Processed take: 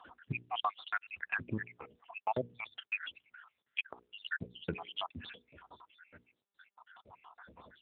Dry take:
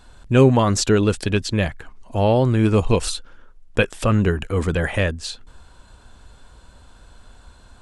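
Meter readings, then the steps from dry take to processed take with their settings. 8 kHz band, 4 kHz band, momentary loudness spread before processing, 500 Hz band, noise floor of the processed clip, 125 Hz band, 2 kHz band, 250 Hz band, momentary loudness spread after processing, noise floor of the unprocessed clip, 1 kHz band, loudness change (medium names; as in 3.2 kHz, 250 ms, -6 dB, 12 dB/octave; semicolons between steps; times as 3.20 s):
under -40 dB, -14.0 dB, 13 LU, -26.0 dB, under -85 dBFS, -28.0 dB, -11.0 dB, -26.5 dB, 21 LU, -49 dBFS, -13.0 dB, -20.0 dB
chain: random holes in the spectrogram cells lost 82%; hum notches 60/120/180/240/300/360/420/480 Hz; compression 5:1, threshold -35 dBFS, peak gain reduction 17 dB; overdrive pedal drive 9 dB, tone 2.4 kHz, clips at -20.5 dBFS; trim +3.5 dB; AMR-NB 7.4 kbps 8 kHz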